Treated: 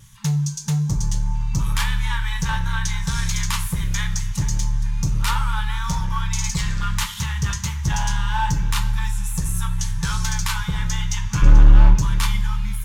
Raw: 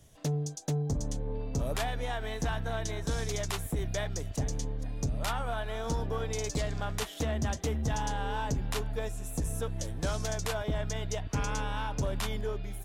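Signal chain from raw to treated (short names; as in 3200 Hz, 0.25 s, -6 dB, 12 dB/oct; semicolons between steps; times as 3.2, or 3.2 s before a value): 11.42–11.95 RIAA curve playback; FFT band-reject 210–830 Hz; vibrato 1.6 Hz 24 cents; in parallel at -3 dB: wavefolder -27.5 dBFS; on the sum: two-slope reverb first 0.29 s, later 2.4 s, from -18 dB, DRR 3 dB; gain +5.5 dB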